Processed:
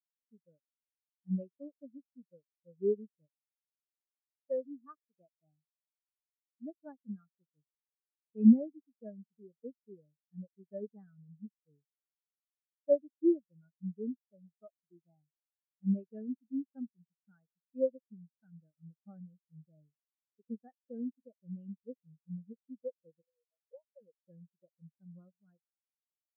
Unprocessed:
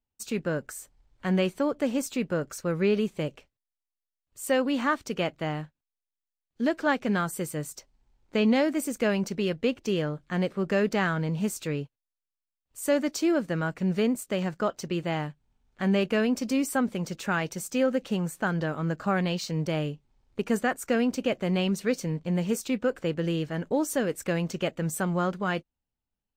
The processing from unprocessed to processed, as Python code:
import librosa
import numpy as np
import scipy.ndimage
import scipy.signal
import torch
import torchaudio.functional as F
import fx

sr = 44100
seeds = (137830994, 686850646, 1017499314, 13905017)

y = fx.cheby_harmonics(x, sr, harmonics=(3,), levels_db=(-16,), full_scale_db=-12.0)
y = fx.brickwall_highpass(y, sr, low_hz=390.0, at=(23.21, 24.0), fade=0.02)
y = fx.spectral_expand(y, sr, expansion=4.0)